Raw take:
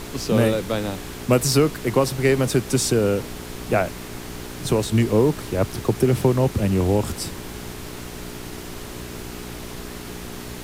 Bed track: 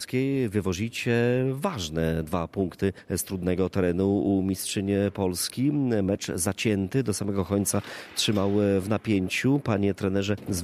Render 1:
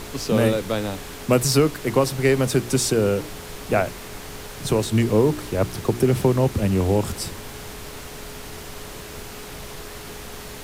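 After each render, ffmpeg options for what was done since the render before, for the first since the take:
-af "bandreject=f=60:t=h:w=4,bandreject=f=120:t=h:w=4,bandreject=f=180:t=h:w=4,bandreject=f=240:t=h:w=4,bandreject=f=300:t=h:w=4,bandreject=f=360:t=h:w=4"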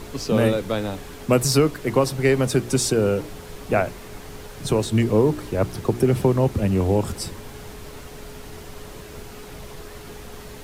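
-af "afftdn=nr=6:nf=-37"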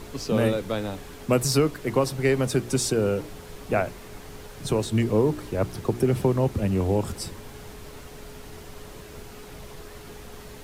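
-af "volume=-3.5dB"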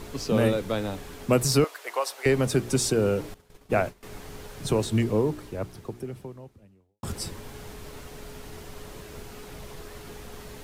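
-filter_complex "[0:a]asettb=1/sr,asplit=3[a][b][c];[a]atrim=end=1.644[d];[b]atrim=start=1.64:end=2.26,asetpts=PTS-STARTPTS,afade=t=in:d=0.004:c=qsin,afade=t=out:st=0.616:d=0.004:c=qsin,highpass=f=600:w=0.5412,highpass=f=600:w=1.3066[e];[c]atrim=start=2.256[f];[d][e]acrossfade=d=0.004:c1=hsin:c2=qsin[g];[g][f]acrossfade=d=0.004:c1=qsin:c2=hsin,asettb=1/sr,asplit=3[h][i][j];[h]atrim=end=3.344[k];[i]atrim=start=3.34:end=4.03,asetpts=PTS-STARTPTS,afade=t=in:d=0.004:c=qsin,afade=t=out:st=0.686:d=0.004:c=qsin,agate=range=-33dB:threshold=-31dB:ratio=3:release=100:detection=peak[l];[j]atrim=start=4.026[m];[k][l]acrossfade=d=0.004:c1=hsin:c2=qsin[n];[n][m]acrossfade=d=0.004:c1=qsin:c2=hsin,asplit=2[o][p];[o]atrim=end=7.03,asetpts=PTS-STARTPTS,afade=t=out:st=4.88:d=2.15:c=qua[q];[p]atrim=start=7.03,asetpts=PTS-STARTPTS,afade=t=in:d=0.004:c=hsin[r];[q][r]concat=n=2:v=0:a=1"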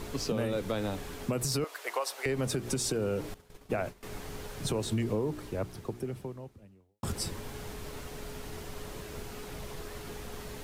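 -af "alimiter=limit=-17.5dB:level=0:latency=1:release=97,acompressor=threshold=-29dB:ratio=2.5"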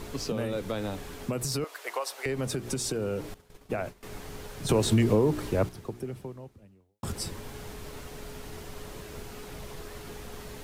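-filter_complex "[0:a]asplit=3[a][b][c];[a]atrim=end=4.692[d];[b]atrim=start=4.688:end=5.692,asetpts=PTS-STARTPTS,volume=8dB[e];[c]atrim=start=5.688[f];[d][e]acrossfade=d=0.004:c1=hsin:c2=hsin[g];[g][f]acrossfade=d=0.004:c1=hsin:c2=hsin"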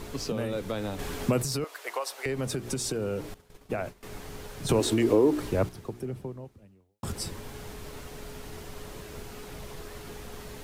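-filter_complex "[0:a]asettb=1/sr,asplit=3[a][b][c];[a]atrim=end=4.804[d];[b]atrim=start=4.8:end=5.4,asetpts=PTS-STARTPTS,afade=t=in:d=0.004:c=qsin,afade=t=out:st=0.596:d=0.004:c=qsin,lowshelf=f=230:t=q:w=3:g=-7[e];[c]atrim=start=5.396[f];[d][e]acrossfade=d=0.004:c1=hsin:c2=qsin[g];[g][f]acrossfade=d=0.004:c1=qsin:c2=hsin,asettb=1/sr,asplit=3[h][i][j];[h]atrim=end=6.054[k];[i]atrim=start=6.05:end=6.45,asetpts=PTS-STARTPTS,afade=t=in:d=0.004:c=qsin,afade=t=out:st=0.396:d=0.004:c=qsin,tiltshelf=f=970:g=3[l];[j]atrim=start=6.446[m];[k][l]acrossfade=d=0.004:c1=hsin:c2=qsin[n];[n][m]acrossfade=d=0.004:c1=qsin:c2=hsin,asplit=3[o][p][q];[o]atrim=end=0.992[r];[p]atrim=start=0.988:end=1.422,asetpts=PTS-STARTPTS,volume=6.5dB[s];[q]atrim=start=1.418[t];[r][s]acrossfade=d=0.004:c1=hsin:c2=hsin[u];[u][t]acrossfade=d=0.004:c1=hsin:c2=hsin"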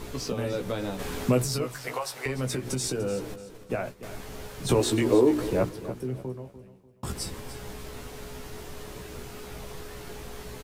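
-filter_complex "[0:a]asplit=2[a][b];[b]adelay=16,volume=-5dB[c];[a][c]amix=inputs=2:normalize=0,aecho=1:1:295|590|885:0.2|0.0658|0.0217"

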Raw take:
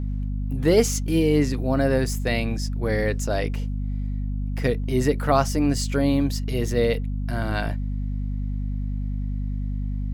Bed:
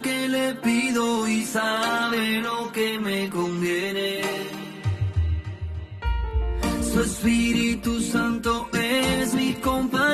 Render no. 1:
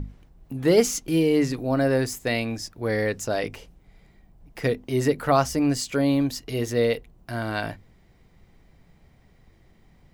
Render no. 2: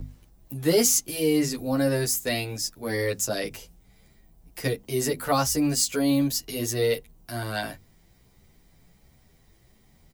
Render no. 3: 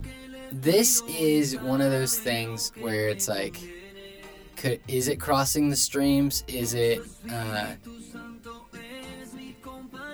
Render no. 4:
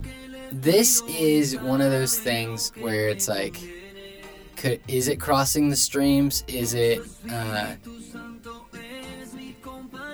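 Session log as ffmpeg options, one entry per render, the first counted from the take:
-af "bandreject=f=50:t=h:w=6,bandreject=f=100:t=h:w=6,bandreject=f=150:t=h:w=6,bandreject=f=200:t=h:w=6,bandreject=f=250:t=h:w=6"
-filter_complex "[0:a]acrossover=split=260|790|2500[a][b][c][d];[d]crystalizer=i=3:c=0[e];[a][b][c][e]amix=inputs=4:normalize=0,asplit=2[f][g];[g]adelay=10,afreqshift=1.4[h];[f][h]amix=inputs=2:normalize=1"
-filter_complex "[1:a]volume=-19dB[a];[0:a][a]amix=inputs=2:normalize=0"
-af "volume=2.5dB"

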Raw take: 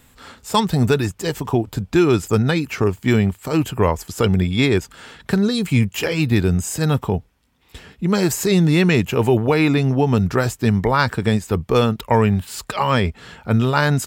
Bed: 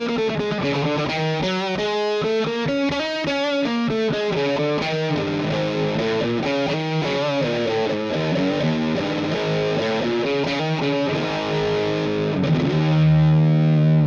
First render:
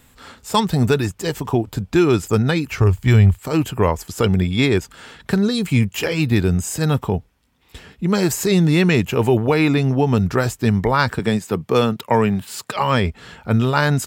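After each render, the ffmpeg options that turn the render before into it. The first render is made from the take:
-filter_complex "[0:a]asplit=3[a][b][c];[a]afade=t=out:st=2.7:d=0.02[d];[b]asubboost=boost=11:cutoff=84,afade=t=in:st=2.7:d=0.02,afade=t=out:st=3.38:d=0.02[e];[c]afade=t=in:st=3.38:d=0.02[f];[d][e][f]amix=inputs=3:normalize=0,asettb=1/sr,asplit=3[g][h][i];[g]atrim=end=11.194[j];[h]atrim=start=11.19:end=12.76,asetpts=PTS-STARTPTS,afade=t=in:d=0.004:c=qsin,afade=t=out:st=1.566:d=0.004:c=qsin,highpass=f=120:w=0.5412,highpass=f=120:w=1.3066[k];[i]atrim=start=12.756[l];[j][k]acrossfade=d=0.004:c1=hsin:c2=qsin[m];[m][l]acrossfade=d=0.004:c1=qsin:c2=hsin"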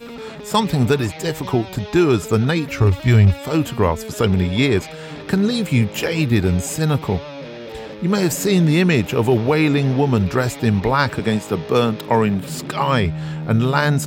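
-filter_complex "[1:a]volume=-11.5dB[a];[0:a][a]amix=inputs=2:normalize=0"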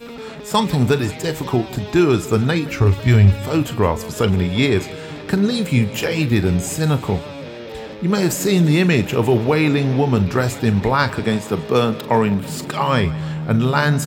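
-filter_complex "[0:a]asplit=2[a][b];[b]adelay=40,volume=-13.5dB[c];[a][c]amix=inputs=2:normalize=0,aecho=1:1:168|336|504|672|840:0.1|0.057|0.0325|0.0185|0.0106"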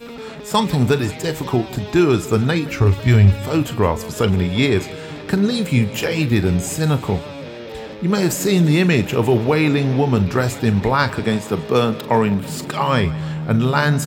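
-af anull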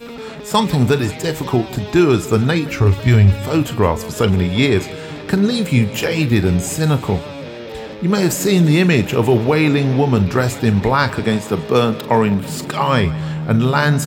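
-af "volume=2dB,alimiter=limit=-2dB:level=0:latency=1"

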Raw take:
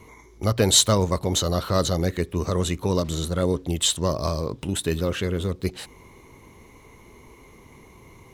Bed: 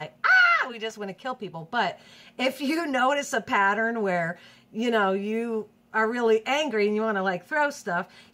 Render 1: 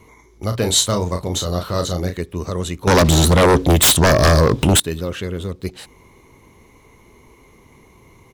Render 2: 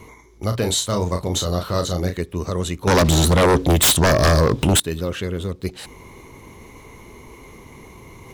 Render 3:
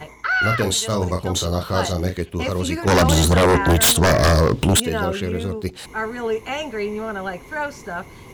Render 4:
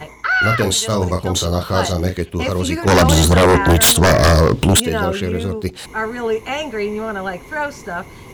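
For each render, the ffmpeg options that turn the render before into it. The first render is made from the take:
-filter_complex "[0:a]asplit=3[a][b][c];[a]afade=t=out:st=0.51:d=0.02[d];[b]asplit=2[e][f];[f]adelay=34,volume=-6.5dB[g];[e][g]amix=inputs=2:normalize=0,afade=t=in:st=0.51:d=0.02,afade=t=out:st=2.15:d=0.02[h];[c]afade=t=in:st=2.15:d=0.02[i];[d][h][i]amix=inputs=3:normalize=0,asettb=1/sr,asplit=3[j][k][l];[j]atrim=end=2.874[m];[k]atrim=start=2.87:end=4.8,asetpts=PTS-STARTPTS,afade=t=in:d=0.004:c=qsin,afade=t=out:st=1.926:d=0.004:c=qsin,aeval=exprs='0.398*sin(PI/2*5.01*val(0)/0.398)':c=same[n];[l]atrim=start=4.796[o];[m][n]acrossfade=d=0.004:c1=hsin:c2=qsin[p];[p][o]acrossfade=d=0.004:c1=qsin:c2=hsin"
-af "areverse,acompressor=mode=upward:threshold=-33dB:ratio=2.5,areverse,alimiter=limit=-10.5dB:level=0:latency=1:release=229"
-filter_complex "[1:a]volume=-2dB[a];[0:a][a]amix=inputs=2:normalize=0"
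-af "volume=3.5dB"

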